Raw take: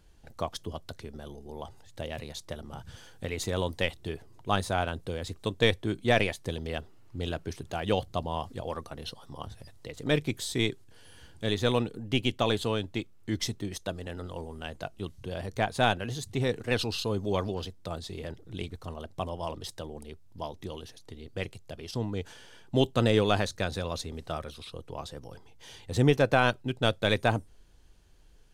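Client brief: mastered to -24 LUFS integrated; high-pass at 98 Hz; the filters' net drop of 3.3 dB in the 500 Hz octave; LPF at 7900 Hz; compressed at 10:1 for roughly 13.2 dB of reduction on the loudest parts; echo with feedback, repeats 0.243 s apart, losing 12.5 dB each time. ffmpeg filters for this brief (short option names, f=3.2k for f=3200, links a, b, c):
-af "highpass=98,lowpass=7.9k,equalizer=f=500:t=o:g=-4,acompressor=threshold=-33dB:ratio=10,aecho=1:1:243|486|729:0.237|0.0569|0.0137,volume=16.5dB"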